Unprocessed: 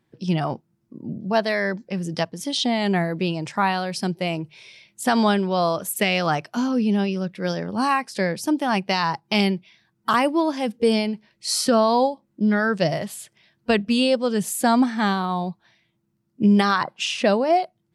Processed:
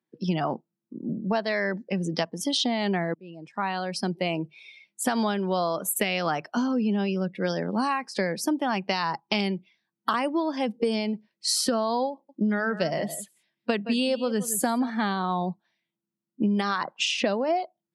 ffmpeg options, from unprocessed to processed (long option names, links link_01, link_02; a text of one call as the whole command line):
ffmpeg -i in.wav -filter_complex "[0:a]asettb=1/sr,asplit=3[link_01][link_02][link_03];[link_01]atrim=end=12.124[link_04];[link_02]atrim=start=12.12:end=14.9,asetpts=PTS-STARTPTS,afade=type=in:duration=0.004:curve=qsin,afade=type=out:start_time=2.776:duration=0.004:curve=qsin,aecho=1:1:169:0.168,atrim=end_sample=122598[link_05];[link_03]atrim=start=14.896[link_06];[link_04][link_05]acrossfade=duration=0.004:curve1=hsin:curve2=qsin[link_07];[link_07][link_06]acrossfade=duration=0.004:curve1=qsin:curve2=hsin,asplit=2[link_08][link_09];[link_08]atrim=end=3.14,asetpts=PTS-STARTPTS,afade=type=out:start_time=3.136:duration=0.004:curve=hsin[link_10];[link_09]atrim=start=3.14,asetpts=PTS-STARTPTS,afade=type=in:duration=1.26[link_11];[link_10][link_11]concat=n=2:v=0:a=1,highpass=frequency=170:width=0.5412,highpass=frequency=170:width=1.3066,afftdn=noise_reduction=17:noise_floor=-42,acompressor=threshold=-24dB:ratio=6,volume=2dB" out.wav